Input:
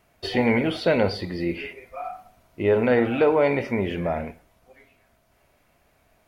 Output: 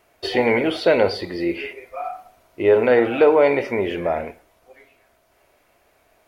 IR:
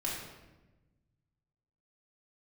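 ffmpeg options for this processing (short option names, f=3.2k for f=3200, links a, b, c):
-af "lowshelf=f=270:t=q:w=1.5:g=-7,volume=3.5dB"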